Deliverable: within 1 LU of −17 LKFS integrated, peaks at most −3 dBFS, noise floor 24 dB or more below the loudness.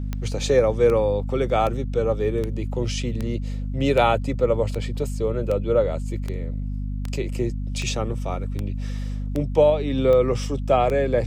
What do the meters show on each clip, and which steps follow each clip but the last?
number of clicks 15; mains hum 50 Hz; hum harmonics up to 250 Hz; level of the hum −25 dBFS; integrated loudness −23.5 LKFS; sample peak −6.0 dBFS; target loudness −17.0 LKFS
→ click removal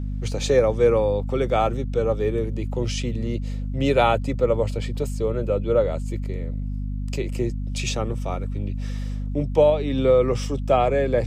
number of clicks 0; mains hum 50 Hz; hum harmonics up to 250 Hz; level of the hum −25 dBFS
→ hum removal 50 Hz, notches 5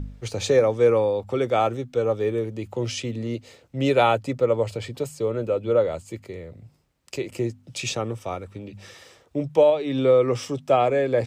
mains hum none found; integrated loudness −23.5 LKFS; sample peak −7.0 dBFS; target loudness −17.0 LKFS
→ level +6.5 dB
brickwall limiter −3 dBFS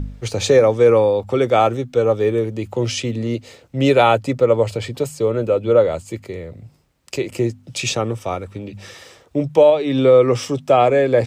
integrated loudness −17.5 LKFS; sample peak −3.0 dBFS; background noise floor −52 dBFS

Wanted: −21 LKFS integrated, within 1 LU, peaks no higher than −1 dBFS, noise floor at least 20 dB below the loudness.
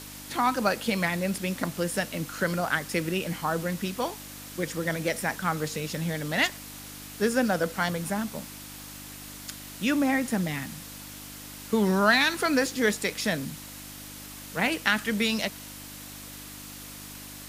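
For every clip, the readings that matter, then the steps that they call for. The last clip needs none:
mains hum 50 Hz; hum harmonics up to 300 Hz; level of the hum −47 dBFS; background noise floor −43 dBFS; target noise floor −48 dBFS; integrated loudness −27.5 LKFS; sample peak −5.0 dBFS; target loudness −21.0 LKFS
→ hum removal 50 Hz, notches 6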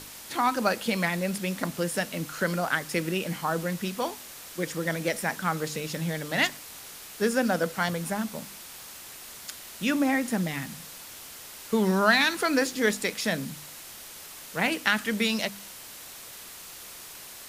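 mains hum none found; background noise floor −44 dBFS; target noise floor −48 dBFS
→ broadband denoise 6 dB, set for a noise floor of −44 dBFS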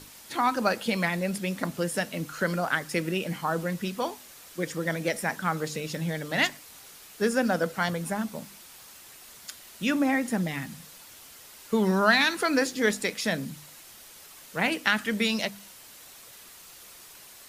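background noise floor −49 dBFS; integrated loudness −27.5 LKFS; sample peak −5.0 dBFS; target loudness −21.0 LKFS
→ level +6.5 dB
brickwall limiter −1 dBFS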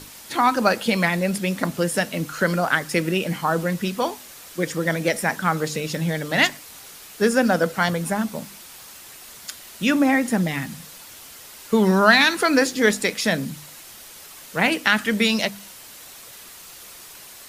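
integrated loudness −21.0 LKFS; sample peak −1.0 dBFS; background noise floor −43 dBFS

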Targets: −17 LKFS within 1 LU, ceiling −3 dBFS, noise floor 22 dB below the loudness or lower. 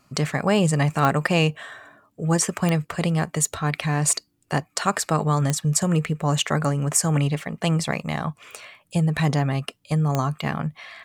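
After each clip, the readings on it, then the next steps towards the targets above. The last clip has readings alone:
number of clicks 4; integrated loudness −23.0 LKFS; sample peak −5.5 dBFS; target loudness −17.0 LKFS
→ click removal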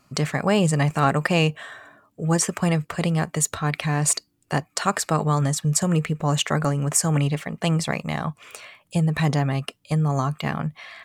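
number of clicks 0; integrated loudness −23.0 LKFS; sample peak −5.5 dBFS; target loudness −17.0 LKFS
→ level +6 dB
brickwall limiter −3 dBFS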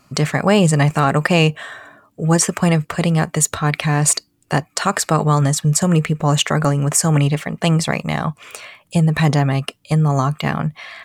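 integrated loudness −17.5 LKFS; sample peak −3.0 dBFS; background noise floor −60 dBFS

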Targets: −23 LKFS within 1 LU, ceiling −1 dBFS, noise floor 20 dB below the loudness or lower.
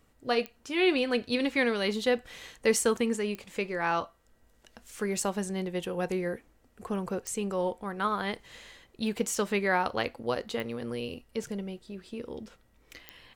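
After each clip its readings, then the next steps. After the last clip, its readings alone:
number of clicks 5; integrated loudness −30.5 LKFS; sample peak −12.5 dBFS; target loudness −23.0 LKFS
→ click removal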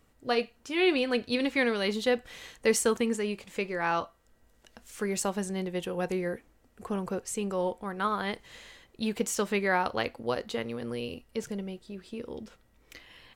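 number of clicks 0; integrated loudness −30.5 LKFS; sample peak −12.5 dBFS; target loudness −23.0 LKFS
→ level +7.5 dB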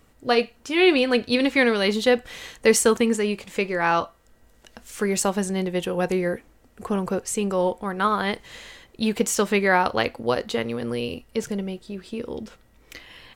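integrated loudness −23.0 LKFS; sample peak −5.0 dBFS; background noise floor −57 dBFS

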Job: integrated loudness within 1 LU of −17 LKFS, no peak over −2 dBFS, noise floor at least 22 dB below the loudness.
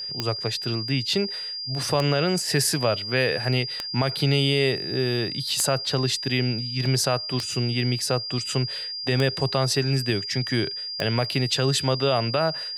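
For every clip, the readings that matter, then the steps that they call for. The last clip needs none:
number of clicks 7; interfering tone 4,800 Hz; level of the tone −30 dBFS; integrated loudness −24.0 LKFS; sample peak −7.5 dBFS; target loudness −17.0 LKFS
→ click removal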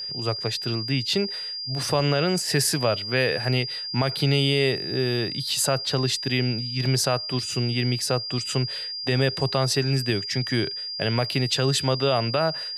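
number of clicks 0; interfering tone 4,800 Hz; level of the tone −30 dBFS
→ notch filter 4,800 Hz, Q 30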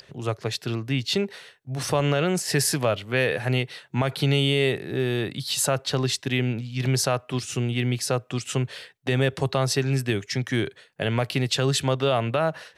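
interfering tone none found; integrated loudness −25.0 LKFS; sample peak −10.5 dBFS; target loudness −17.0 LKFS
→ level +8 dB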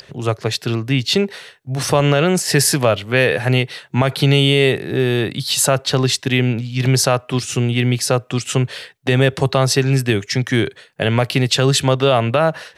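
integrated loudness −17.0 LKFS; sample peak −2.5 dBFS; background noise floor −50 dBFS

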